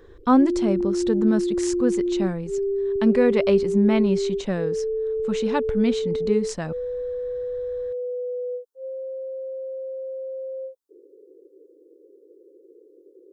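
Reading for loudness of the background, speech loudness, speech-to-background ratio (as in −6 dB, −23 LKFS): −27.0 LKFS, −23.5 LKFS, 3.5 dB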